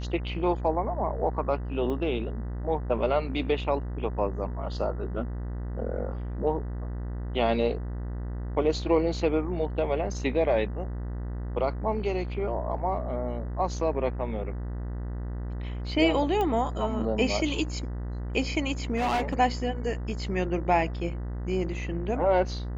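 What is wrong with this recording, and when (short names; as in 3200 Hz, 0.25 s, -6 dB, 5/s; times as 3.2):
buzz 60 Hz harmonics 33 -33 dBFS
1.9 gap 2 ms
16.41 pop -17 dBFS
18.96–19.39 clipped -22.5 dBFS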